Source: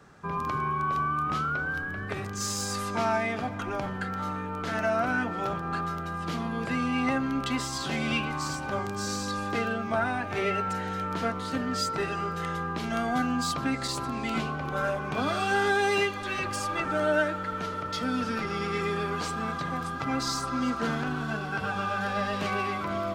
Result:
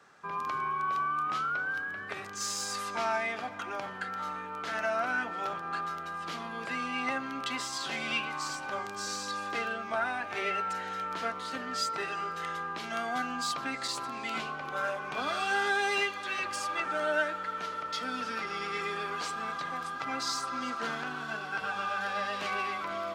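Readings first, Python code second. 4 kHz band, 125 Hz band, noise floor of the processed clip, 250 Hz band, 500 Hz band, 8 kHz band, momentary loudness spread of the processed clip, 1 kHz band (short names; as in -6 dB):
-1.0 dB, -16.5 dB, -40 dBFS, -12.0 dB, -6.5 dB, -2.5 dB, 6 LU, -2.5 dB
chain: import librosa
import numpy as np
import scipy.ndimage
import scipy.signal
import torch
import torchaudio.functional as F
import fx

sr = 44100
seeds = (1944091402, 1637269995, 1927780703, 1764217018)

y = fx.highpass(x, sr, hz=950.0, slope=6)
y = fx.high_shelf(y, sr, hz=9100.0, db=-7.0)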